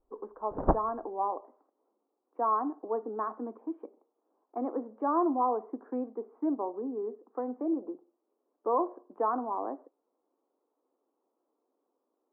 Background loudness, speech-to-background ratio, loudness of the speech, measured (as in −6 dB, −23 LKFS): −32.0 LKFS, −1.5 dB, −33.5 LKFS